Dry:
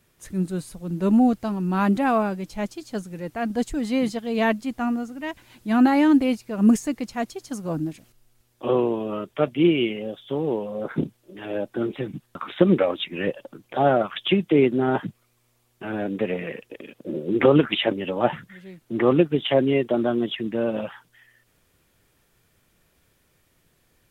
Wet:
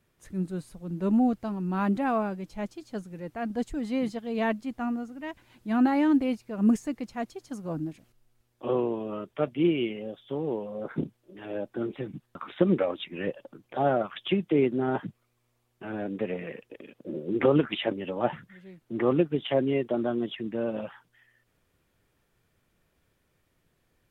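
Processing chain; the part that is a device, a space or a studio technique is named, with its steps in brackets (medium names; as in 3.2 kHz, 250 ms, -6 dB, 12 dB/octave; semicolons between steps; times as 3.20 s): behind a face mask (treble shelf 3.4 kHz -7 dB); trim -5.5 dB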